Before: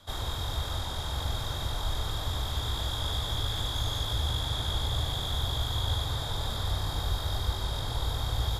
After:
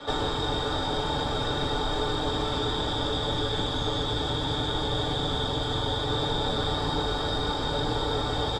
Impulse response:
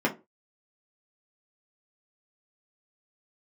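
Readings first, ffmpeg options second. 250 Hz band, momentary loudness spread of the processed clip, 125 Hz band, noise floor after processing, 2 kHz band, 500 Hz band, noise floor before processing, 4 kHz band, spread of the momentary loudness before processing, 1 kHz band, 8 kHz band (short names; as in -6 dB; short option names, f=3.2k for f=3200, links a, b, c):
+12.5 dB, 1 LU, -0.5 dB, -30 dBFS, +7.0 dB, +12.5 dB, -35 dBFS, +4.0 dB, 3 LU, +8.5 dB, -2.5 dB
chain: -filter_complex "[0:a]lowpass=f=8.3k:w=0.5412,lowpass=f=8.3k:w=1.3066,acrossover=split=200|5800[a][b][c];[a]acompressor=threshold=-31dB:ratio=4[d];[b]acompressor=threshold=-48dB:ratio=4[e];[c]acompressor=threshold=-54dB:ratio=4[f];[d][e][f]amix=inputs=3:normalize=0,aecho=1:1:6.8:0.46[g];[1:a]atrim=start_sample=2205,asetrate=66150,aresample=44100[h];[g][h]afir=irnorm=-1:irlink=0,volume=7.5dB"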